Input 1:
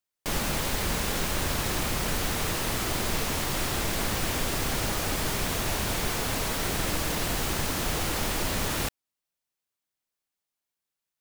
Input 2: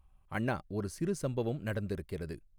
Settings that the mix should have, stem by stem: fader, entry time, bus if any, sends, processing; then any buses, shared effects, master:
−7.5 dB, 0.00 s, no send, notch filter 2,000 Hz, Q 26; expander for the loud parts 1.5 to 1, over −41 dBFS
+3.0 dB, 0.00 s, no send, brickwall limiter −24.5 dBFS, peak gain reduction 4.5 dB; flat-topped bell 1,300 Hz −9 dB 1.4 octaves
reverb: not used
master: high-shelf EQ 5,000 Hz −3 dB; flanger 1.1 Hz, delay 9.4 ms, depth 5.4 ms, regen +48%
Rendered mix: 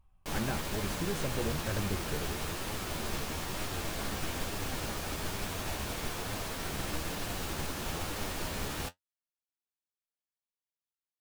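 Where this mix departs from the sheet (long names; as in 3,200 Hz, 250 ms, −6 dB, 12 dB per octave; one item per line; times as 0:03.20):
stem 1 −7.5 dB → −1.5 dB
stem 2: missing flat-topped bell 1,300 Hz −9 dB 1.4 octaves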